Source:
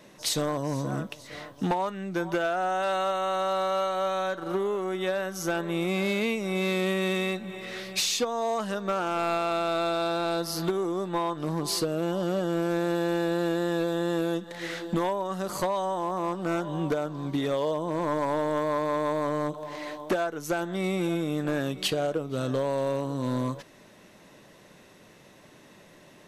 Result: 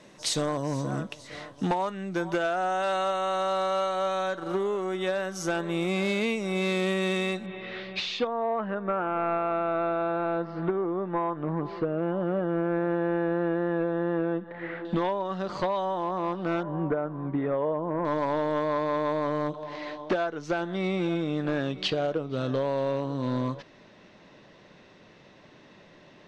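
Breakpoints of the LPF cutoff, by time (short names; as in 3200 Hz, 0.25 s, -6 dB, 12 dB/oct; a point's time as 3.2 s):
LPF 24 dB/oct
9500 Hz
from 7.46 s 3700 Hz
from 8.27 s 2100 Hz
from 14.85 s 4500 Hz
from 16.63 s 1900 Hz
from 18.05 s 5100 Hz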